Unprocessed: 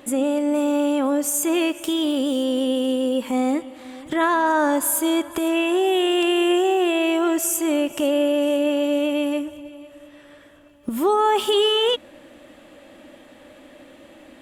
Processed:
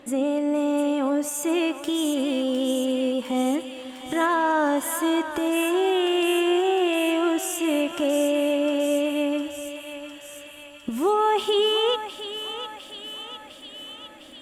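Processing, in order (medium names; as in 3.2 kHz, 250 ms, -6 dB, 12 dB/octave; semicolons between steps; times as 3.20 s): treble shelf 9.4 kHz -10.5 dB; on a send: thinning echo 706 ms, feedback 74%, high-pass 1.1 kHz, level -7 dB; on the sum: trim -2.5 dB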